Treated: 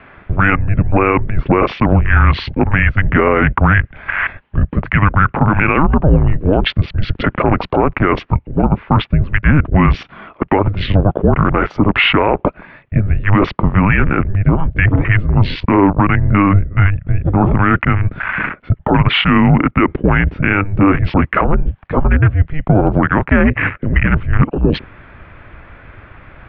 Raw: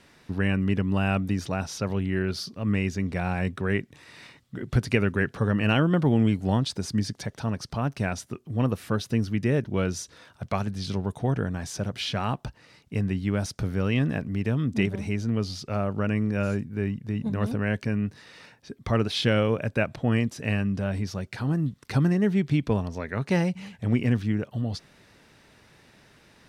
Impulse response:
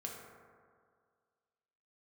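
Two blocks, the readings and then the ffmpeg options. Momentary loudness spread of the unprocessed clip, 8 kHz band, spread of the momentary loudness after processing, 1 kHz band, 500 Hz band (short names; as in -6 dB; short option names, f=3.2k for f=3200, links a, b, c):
9 LU, under -15 dB, 7 LU, +18.5 dB, +11.0 dB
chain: -af "highpass=f=110:w=0.5412,highpass=f=110:w=1.3066,areverse,acompressor=threshold=-32dB:ratio=8,areverse,afwtdn=0.00447,deesser=0.8,highpass=f=340:t=q:w=0.5412,highpass=f=340:t=q:w=1.307,lowpass=f=2.8k:t=q:w=0.5176,lowpass=f=2.8k:t=q:w=0.7071,lowpass=f=2.8k:t=q:w=1.932,afreqshift=-300,alimiter=level_in=35.5dB:limit=-1dB:release=50:level=0:latency=1,volume=-1dB"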